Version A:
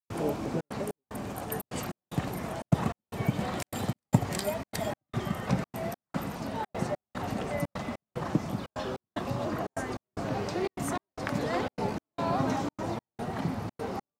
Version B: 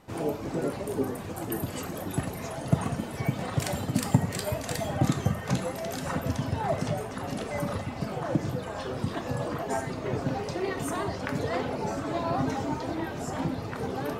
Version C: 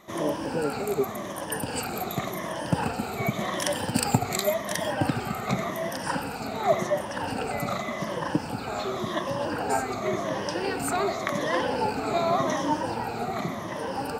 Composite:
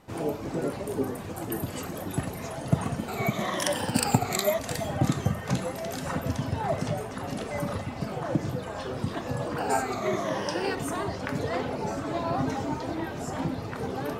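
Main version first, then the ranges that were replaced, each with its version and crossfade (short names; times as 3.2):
B
3.08–4.59 from C
9.57–10.75 from C
not used: A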